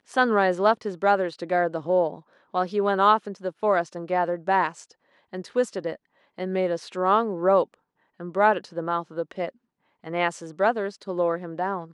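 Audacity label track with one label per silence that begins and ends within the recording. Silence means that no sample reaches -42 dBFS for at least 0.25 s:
2.200000	2.540000	silence
4.920000	5.330000	silence
5.960000	6.380000	silence
7.740000	8.200000	silence
9.500000	10.040000	silence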